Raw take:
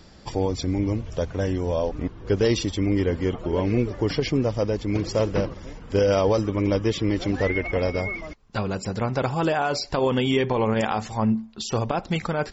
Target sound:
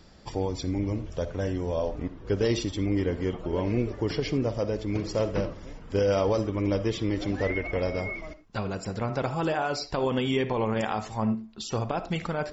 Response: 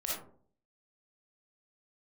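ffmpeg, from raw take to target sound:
-filter_complex "[0:a]asplit=2[a][b];[1:a]atrim=start_sample=2205,afade=t=out:st=0.17:d=0.01,atrim=end_sample=7938,highshelf=f=4.9k:g=-9[c];[b][c]afir=irnorm=-1:irlink=0,volume=-11.5dB[d];[a][d]amix=inputs=2:normalize=0,volume=-6dB"

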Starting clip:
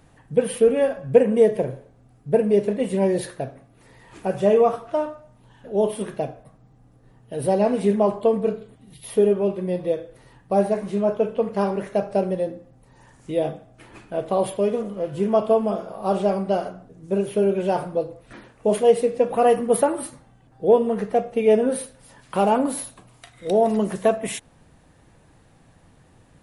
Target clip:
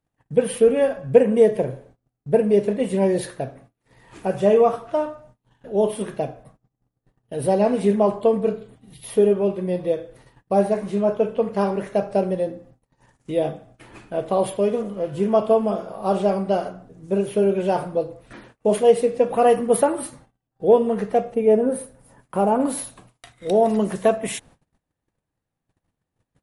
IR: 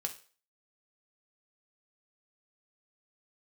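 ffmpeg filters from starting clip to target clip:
-filter_complex "[0:a]agate=range=-29dB:threshold=-49dB:ratio=16:detection=peak,asplit=3[a][b][c];[a]afade=t=out:st=21.33:d=0.02[d];[b]equalizer=f=3.8k:t=o:w=2.1:g=-13.5,afade=t=in:st=21.33:d=0.02,afade=t=out:st=22.59:d=0.02[e];[c]afade=t=in:st=22.59:d=0.02[f];[d][e][f]amix=inputs=3:normalize=0,volume=1dB"

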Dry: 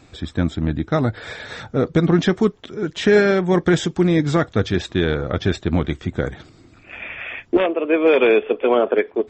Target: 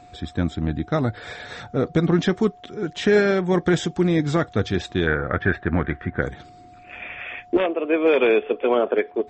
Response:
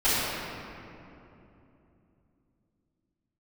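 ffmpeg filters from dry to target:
-filter_complex "[0:a]asettb=1/sr,asplit=3[a][b][c];[a]atrim=end=5.074[d];[b]atrim=start=5.07:end=6.22,asetpts=PTS-STARTPTS,afade=t=in:d=0.004:c=qsin,afade=t=out:st=1.146:d=0.004:c=qsin,lowpass=f=1.7k:t=q:w=4[e];[c]atrim=start=6.216[f];[d][e]acrossfade=d=0.004:c1=hsin:c2=qsin[g];[g][f]acrossfade=d=0.004:c1=qsin:c2=hsin,aeval=exprs='val(0)+0.00794*sin(2*PI*720*n/s)':c=same,volume=-3dB"

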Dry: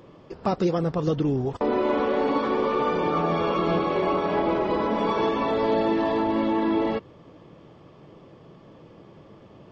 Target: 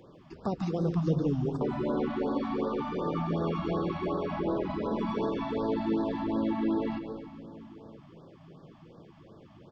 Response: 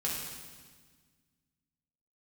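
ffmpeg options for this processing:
-filter_complex "[0:a]acrossover=split=470[a][b];[b]acompressor=threshold=-36dB:ratio=2[c];[a][c]amix=inputs=2:normalize=0,asplit=2[d][e];[e]adelay=991.3,volume=-20dB,highshelf=f=4k:g=-22.3[f];[d][f]amix=inputs=2:normalize=0,asplit=2[g][h];[1:a]atrim=start_sample=2205,adelay=144[i];[h][i]afir=irnorm=-1:irlink=0,volume=-11dB[j];[g][j]amix=inputs=2:normalize=0,afftfilt=real='re*(1-between(b*sr/1024,400*pow(2500/400,0.5+0.5*sin(2*PI*2.7*pts/sr))/1.41,400*pow(2500/400,0.5+0.5*sin(2*PI*2.7*pts/sr))*1.41))':imag='im*(1-between(b*sr/1024,400*pow(2500/400,0.5+0.5*sin(2*PI*2.7*pts/sr))/1.41,400*pow(2500/400,0.5+0.5*sin(2*PI*2.7*pts/sr))*1.41))':win_size=1024:overlap=0.75,volume=-4.5dB"

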